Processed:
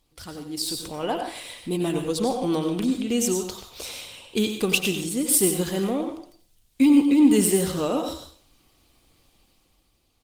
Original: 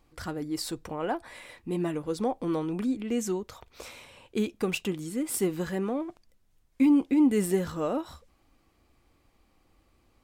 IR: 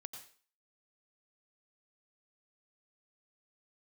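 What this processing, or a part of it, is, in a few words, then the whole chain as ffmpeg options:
speakerphone in a meeting room: -filter_complex "[0:a]highshelf=f=2500:t=q:w=1.5:g=8.5[s0];[1:a]atrim=start_sample=2205[s1];[s0][s1]afir=irnorm=-1:irlink=0,asplit=2[s2][s3];[s3]adelay=150,highpass=300,lowpass=3400,asoftclip=type=hard:threshold=0.0631,volume=0.112[s4];[s2][s4]amix=inputs=2:normalize=0,dynaudnorm=f=100:g=17:m=2.66,volume=1.19" -ar 48000 -c:a libopus -b:a 24k

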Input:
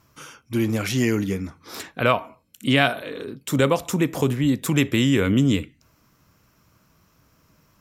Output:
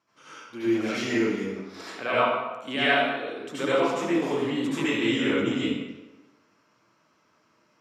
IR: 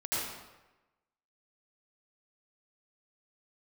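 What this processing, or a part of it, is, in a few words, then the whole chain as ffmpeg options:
supermarket ceiling speaker: -filter_complex "[0:a]highpass=290,lowpass=5200[s0];[1:a]atrim=start_sample=2205[s1];[s0][s1]afir=irnorm=-1:irlink=0,volume=0.422"

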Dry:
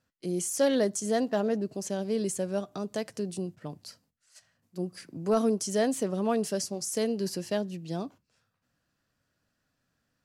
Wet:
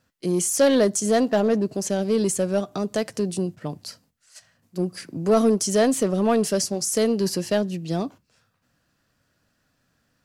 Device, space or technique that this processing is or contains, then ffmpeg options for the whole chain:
parallel distortion: -filter_complex "[0:a]asplit=2[s0][s1];[s1]asoftclip=type=hard:threshold=0.0447,volume=0.501[s2];[s0][s2]amix=inputs=2:normalize=0,volume=1.78"

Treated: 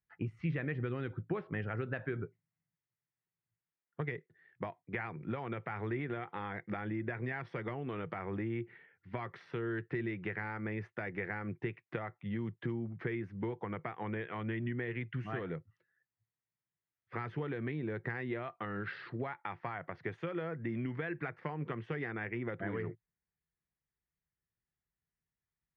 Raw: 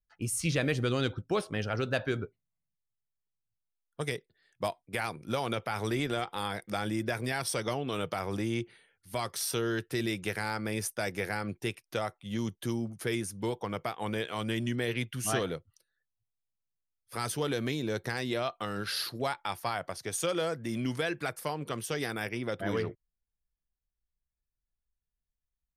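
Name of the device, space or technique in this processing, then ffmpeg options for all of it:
bass amplifier: -af "acompressor=threshold=0.0141:ratio=6,highpass=87,equalizer=f=110:t=q:w=4:g=5,equalizer=f=160:t=q:w=4:g=7,equalizer=f=360:t=q:w=4:g=4,equalizer=f=600:t=q:w=4:g=-4,equalizer=f=1900:t=q:w=4:g=7,lowpass=f=2300:w=0.5412,lowpass=f=2300:w=1.3066,volume=1.12"

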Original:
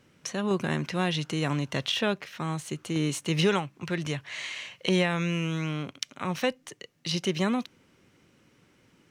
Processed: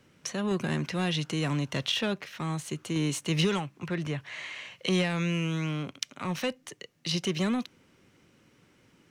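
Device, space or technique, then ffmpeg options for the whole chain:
one-band saturation: -filter_complex "[0:a]acrossover=split=260|2500[s0][s1][s2];[s1]asoftclip=type=tanh:threshold=0.0422[s3];[s0][s3][s2]amix=inputs=3:normalize=0,asettb=1/sr,asplit=3[s4][s5][s6];[s4]atrim=end=3.744[s7];[s5]atrim=start=3.74:end=4.72,asetpts=PTS-STARTPTS,afade=t=in:d=0.004:c=qsin,afade=t=out:st=0.976:d=0.004:c=qsin,acrossover=split=2500[s8][s9];[s9]acompressor=threshold=0.00447:ratio=4:attack=1:release=60[s10];[s8][s10]amix=inputs=2:normalize=0[s11];[s6]atrim=start=4.716[s12];[s7][s11]acrossfade=d=0.004:c1=hsin:c2=qsin[s13];[s13][s12]acrossfade=d=0.004:c1=qsin:c2=hsin"

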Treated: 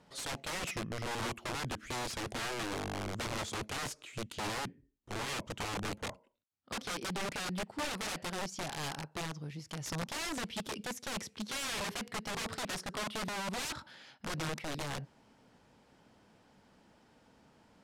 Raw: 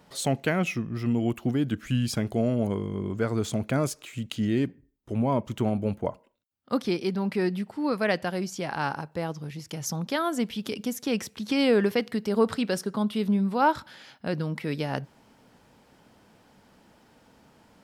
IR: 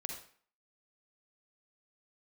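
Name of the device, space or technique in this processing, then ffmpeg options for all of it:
overflowing digital effects unit: -af "aeval=exprs='(mod(20*val(0)+1,2)-1)/20':c=same,lowpass=9400,volume=0.501"

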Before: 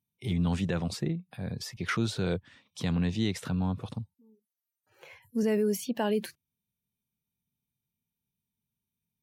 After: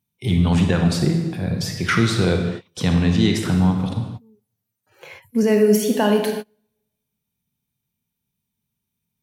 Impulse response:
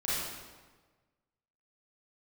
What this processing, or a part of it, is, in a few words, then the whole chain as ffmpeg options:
keyed gated reverb: -filter_complex "[0:a]asplit=3[s0][s1][s2];[1:a]atrim=start_sample=2205[s3];[s1][s3]afir=irnorm=-1:irlink=0[s4];[s2]apad=whole_len=406761[s5];[s4][s5]sidechaingate=range=0.0224:threshold=0.00224:ratio=16:detection=peak,volume=0.398[s6];[s0][s6]amix=inputs=2:normalize=0,volume=2.51"

